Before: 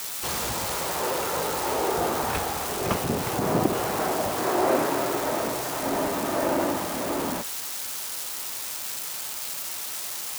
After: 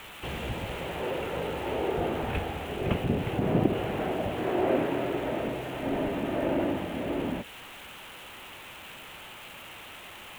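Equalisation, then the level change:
dynamic equaliser 1,100 Hz, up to −8 dB, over −43 dBFS, Q 1.6
spectral tilt −2 dB per octave
high shelf with overshoot 3,800 Hz −9.5 dB, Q 3
−4.0 dB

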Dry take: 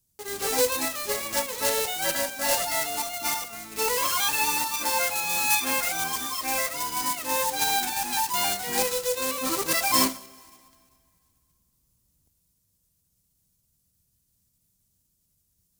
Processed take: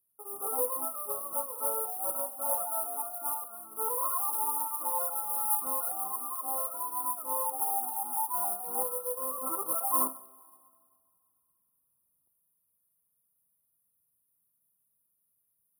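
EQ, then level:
high-pass filter 1,000 Hz 6 dB per octave
linear-phase brick-wall band-stop 1,400–9,200 Hz
−2.0 dB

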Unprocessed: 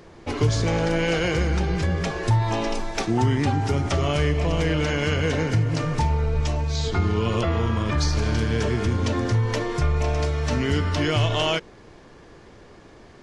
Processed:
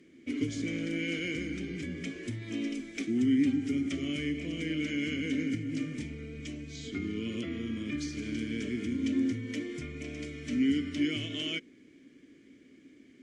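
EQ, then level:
formant filter i
high shelf with overshoot 5,700 Hz +12.5 dB, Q 1.5
+3.5 dB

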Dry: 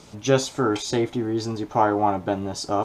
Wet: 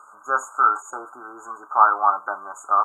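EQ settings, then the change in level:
high-pass with resonance 1,200 Hz, resonance Q 5.5
linear-phase brick-wall band-stop 1,600–6,600 Hz
high-shelf EQ 5,200 Hz −8 dB
+1.0 dB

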